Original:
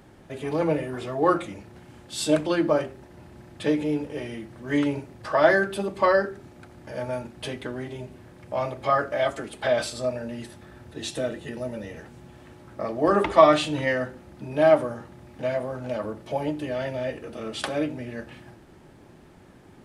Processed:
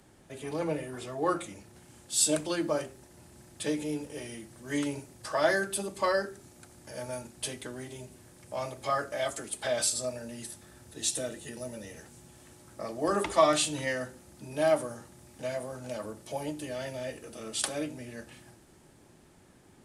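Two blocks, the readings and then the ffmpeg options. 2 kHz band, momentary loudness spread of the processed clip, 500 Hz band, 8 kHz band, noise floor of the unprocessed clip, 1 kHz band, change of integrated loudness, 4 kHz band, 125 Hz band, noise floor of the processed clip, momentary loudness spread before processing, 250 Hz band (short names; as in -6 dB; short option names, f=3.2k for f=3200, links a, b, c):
-6.5 dB, 18 LU, -8.0 dB, +9.0 dB, -51 dBFS, -7.5 dB, -6.5 dB, -1.0 dB, -8.0 dB, -58 dBFS, 18 LU, -8.0 dB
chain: -filter_complex "[0:a]equalizer=f=9k:t=o:w=1.7:g=12,acrossover=split=140|5000[a][b][c];[c]dynaudnorm=f=200:g=17:m=7.5dB[d];[a][b][d]amix=inputs=3:normalize=0,volume=-8dB"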